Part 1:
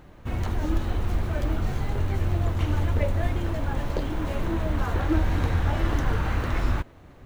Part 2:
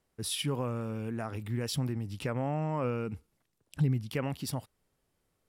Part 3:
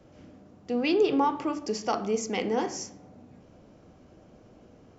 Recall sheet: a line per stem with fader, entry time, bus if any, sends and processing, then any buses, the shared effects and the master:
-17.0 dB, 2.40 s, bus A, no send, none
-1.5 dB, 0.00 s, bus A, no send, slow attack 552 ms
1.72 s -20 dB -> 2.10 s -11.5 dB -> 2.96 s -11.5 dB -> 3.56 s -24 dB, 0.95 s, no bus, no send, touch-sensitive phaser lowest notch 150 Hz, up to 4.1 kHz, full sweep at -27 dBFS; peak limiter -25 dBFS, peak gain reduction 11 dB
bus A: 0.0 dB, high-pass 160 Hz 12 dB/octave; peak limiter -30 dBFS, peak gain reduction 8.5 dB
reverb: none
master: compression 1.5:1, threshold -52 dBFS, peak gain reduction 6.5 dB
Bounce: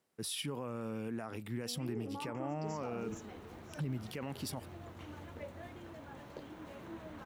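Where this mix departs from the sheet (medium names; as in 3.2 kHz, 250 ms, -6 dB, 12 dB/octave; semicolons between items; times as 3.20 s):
stem 2: missing slow attack 552 ms; master: missing compression 1.5:1, threshold -52 dBFS, peak gain reduction 6.5 dB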